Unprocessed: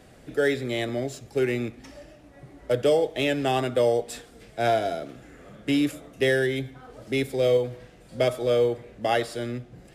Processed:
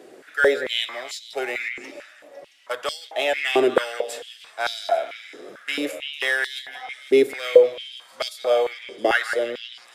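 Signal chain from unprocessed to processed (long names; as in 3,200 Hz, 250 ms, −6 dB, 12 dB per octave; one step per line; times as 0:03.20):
echo through a band-pass that steps 168 ms, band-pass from 1,600 Hz, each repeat 0.7 octaves, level −6 dB
high-pass on a step sequencer 4.5 Hz 370–4,200 Hz
level +2 dB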